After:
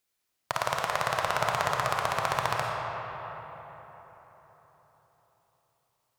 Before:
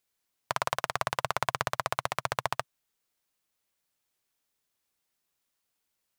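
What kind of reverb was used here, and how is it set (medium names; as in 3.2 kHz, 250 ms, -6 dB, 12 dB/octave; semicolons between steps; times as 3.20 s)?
algorithmic reverb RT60 4.4 s, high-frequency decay 0.5×, pre-delay 10 ms, DRR -1 dB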